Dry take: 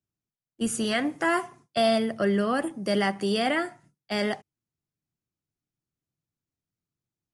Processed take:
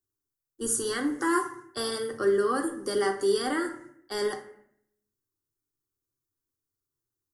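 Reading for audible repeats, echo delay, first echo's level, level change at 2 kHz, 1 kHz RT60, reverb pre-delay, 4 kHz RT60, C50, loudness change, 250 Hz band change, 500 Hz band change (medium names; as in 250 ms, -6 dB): no echo, no echo, no echo, -4.5 dB, 0.65 s, 3 ms, 0.45 s, 10.0 dB, -2.0 dB, -4.0 dB, 0.0 dB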